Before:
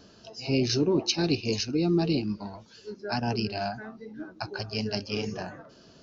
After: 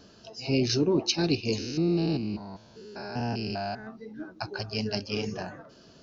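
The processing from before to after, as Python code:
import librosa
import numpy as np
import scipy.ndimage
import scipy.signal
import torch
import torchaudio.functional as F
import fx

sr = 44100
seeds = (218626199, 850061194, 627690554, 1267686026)

y = fx.spec_steps(x, sr, hold_ms=200, at=(1.58, 3.87))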